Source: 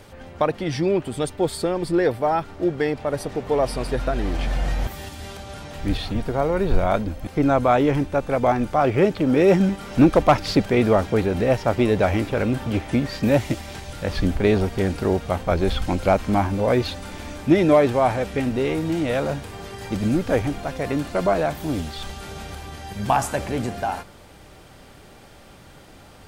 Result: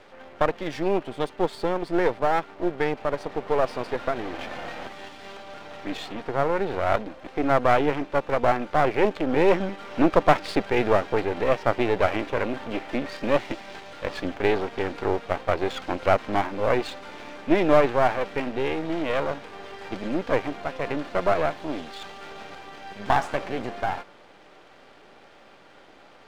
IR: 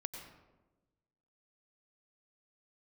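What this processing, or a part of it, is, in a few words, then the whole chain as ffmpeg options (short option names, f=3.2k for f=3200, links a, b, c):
crystal radio: -af "highpass=330,lowpass=3.3k,aeval=exprs='if(lt(val(0),0),0.251*val(0),val(0))':c=same,volume=2dB"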